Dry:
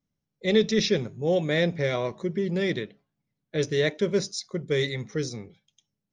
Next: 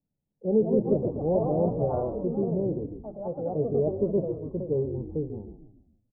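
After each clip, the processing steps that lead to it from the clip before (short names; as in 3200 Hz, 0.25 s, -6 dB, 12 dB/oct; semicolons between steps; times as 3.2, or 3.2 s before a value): steep low-pass 930 Hz 72 dB/oct; frequency-shifting echo 0.142 s, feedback 45%, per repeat -46 Hz, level -9 dB; echoes that change speed 0.267 s, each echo +3 st, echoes 2, each echo -6 dB; gain -1.5 dB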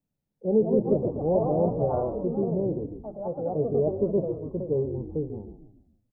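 bell 1100 Hz +3 dB 2 oct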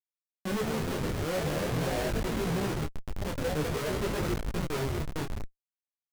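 regenerating reverse delay 0.111 s, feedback 66%, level -13 dB; Schmitt trigger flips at -28.5 dBFS; detuned doubles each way 16 cents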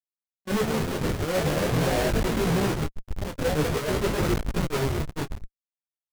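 gate -31 dBFS, range -37 dB; gain +6.5 dB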